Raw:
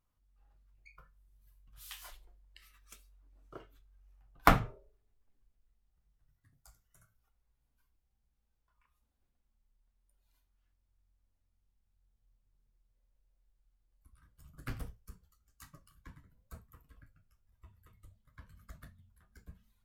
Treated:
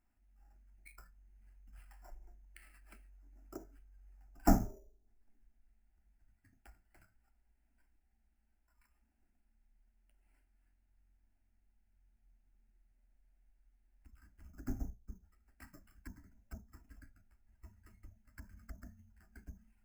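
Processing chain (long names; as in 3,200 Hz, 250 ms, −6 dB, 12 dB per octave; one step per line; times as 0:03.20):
soft clipping −17 dBFS, distortion −9 dB
treble cut that deepens with the level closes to 690 Hz, closed at −47 dBFS
hollow resonant body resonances 200/1,100/3,700 Hz, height 8 dB, ringing for 35 ms
sample-rate reduction 6,400 Hz, jitter 0%
phaser with its sweep stopped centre 740 Hz, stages 8
level +4 dB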